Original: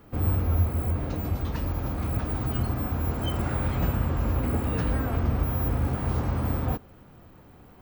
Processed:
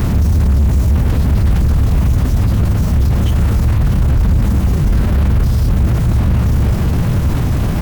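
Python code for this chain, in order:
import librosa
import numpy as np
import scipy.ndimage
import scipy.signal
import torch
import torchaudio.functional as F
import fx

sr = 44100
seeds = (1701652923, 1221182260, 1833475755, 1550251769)

y = np.sign(x) * np.sqrt(np.mean(np.square(x)))
y = fx.bass_treble(y, sr, bass_db=15, treble_db=-4)
y = fx.pitch_keep_formants(y, sr, semitones=-3.0)
y = y * librosa.db_to_amplitude(3.0)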